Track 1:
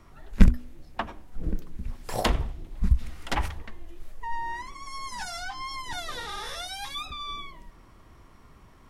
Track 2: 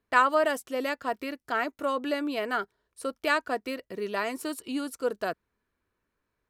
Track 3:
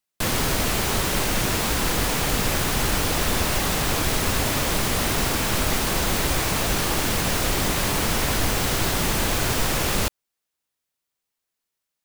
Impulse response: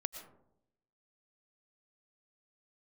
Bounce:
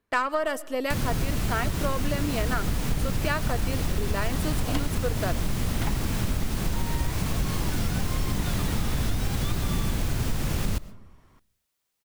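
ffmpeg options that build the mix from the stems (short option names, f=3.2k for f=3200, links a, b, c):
-filter_complex "[0:a]asoftclip=type=tanh:threshold=-14.5dB,adelay=2500,volume=-4.5dB[a];[1:a]aeval=exprs='0.376*(cos(1*acos(clip(val(0)/0.376,-1,1)))-cos(1*PI/2))+0.0211*(cos(6*acos(clip(val(0)/0.376,-1,1)))-cos(6*PI/2))':c=same,volume=0.5dB,asplit=2[b][c];[c]volume=-12.5dB[d];[2:a]acrossover=split=240[e][f];[f]acompressor=threshold=-59dB:ratio=1.5[g];[e][g]amix=inputs=2:normalize=0,adelay=700,volume=1.5dB,asplit=2[h][i];[i]volume=-9dB[j];[3:a]atrim=start_sample=2205[k];[d][j]amix=inputs=2:normalize=0[l];[l][k]afir=irnorm=-1:irlink=0[m];[a][b][h][m]amix=inputs=4:normalize=0,acompressor=threshold=-21dB:ratio=6"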